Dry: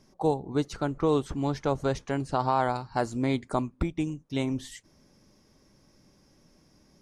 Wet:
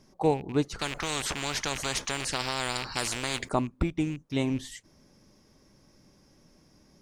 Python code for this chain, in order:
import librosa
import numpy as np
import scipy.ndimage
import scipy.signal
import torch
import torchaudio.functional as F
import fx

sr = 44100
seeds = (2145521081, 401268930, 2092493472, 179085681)

y = fx.rattle_buzz(x, sr, strikes_db=-36.0, level_db=-37.0)
y = fx.spectral_comp(y, sr, ratio=4.0, at=(0.79, 3.49))
y = F.gain(torch.from_numpy(y), 1.0).numpy()